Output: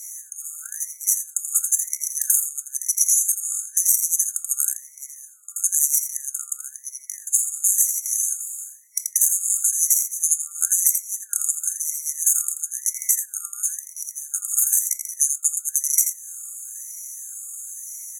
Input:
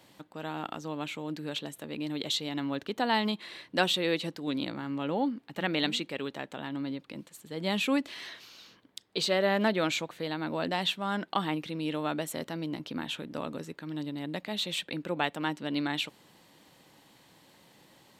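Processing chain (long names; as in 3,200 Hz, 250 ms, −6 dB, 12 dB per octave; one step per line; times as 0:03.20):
stylus tracing distortion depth 0.3 ms
meter weighting curve ITU-R 468
brick-wall band-stop 100–7,800 Hz
low-shelf EQ 100 Hz +7 dB
downward compressor 10 to 1, threshold −41 dBFS, peak gain reduction 19.5 dB
notch comb filter 520 Hz
single-tap delay 83 ms −9.5 dB
on a send at −9 dB: convolution reverb RT60 0.30 s, pre-delay 3 ms
on the sum: boost into a limiter +32.5 dB
ring modulator whose carrier an LFO sweeps 1,700 Hz, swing 25%, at 1 Hz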